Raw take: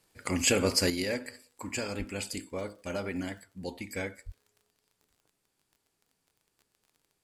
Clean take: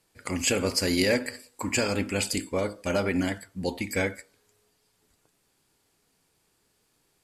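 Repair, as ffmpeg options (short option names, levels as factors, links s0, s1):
-filter_complex "[0:a]adeclick=t=4,asplit=3[s0][s1][s2];[s0]afade=t=out:st=1.98:d=0.02[s3];[s1]highpass=f=140:w=0.5412,highpass=f=140:w=1.3066,afade=t=in:st=1.98:d=0.02,afade=t=out:st=2.1:d=0.02[s4];[s2]afade=t=in:st=2.1:d=0.02[s5];[s3][s4][s5]amix=inputs=3:normalize=0,asplit=3[s6][s7][s8];[s6]afade=t=out:st=4.25:d=0.02[s9];[s7]highpass=f=140:w=0.5412,highpass=f=140:w=1.3066,afade=t=in:st=4.25:d=0.02,afade=t=out:st=4.37:d=0.02[s10];[s8]afade=t=in:st=4.37:d=0.02[s11];[s9][s10][s11]amix=inputs=3:normalize=0,asetnsamples=n=441:p=0,asendcmd='0.9 volume volume 8.5dB',volume=1"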